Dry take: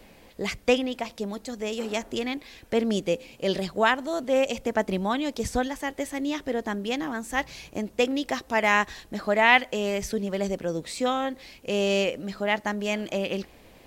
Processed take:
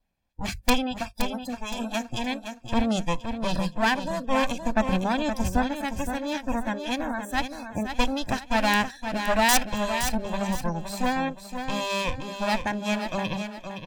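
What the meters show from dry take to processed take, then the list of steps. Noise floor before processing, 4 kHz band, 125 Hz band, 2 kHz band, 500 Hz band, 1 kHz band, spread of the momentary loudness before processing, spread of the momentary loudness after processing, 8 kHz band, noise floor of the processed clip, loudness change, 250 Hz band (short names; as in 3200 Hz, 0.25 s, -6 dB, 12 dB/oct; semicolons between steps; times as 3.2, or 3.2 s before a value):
-53 dBFS, +1.0 dB, +3.5 dB, -2.0 dB, -4.0 dB, +1.5 dB, 10 LU, 8 LU, +5.5 dB, -48 dBFS, -0.5 dB, +1.5 dB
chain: minimum comb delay 1.2 ms; wrapped overs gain 11 dB; low shelf 180 Hz +9.5 dB; notches 50/100/150/200 Hz; spectral noise reduction 29 dB; on a send: feedback echo 0.518 s, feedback 33%, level -8 dB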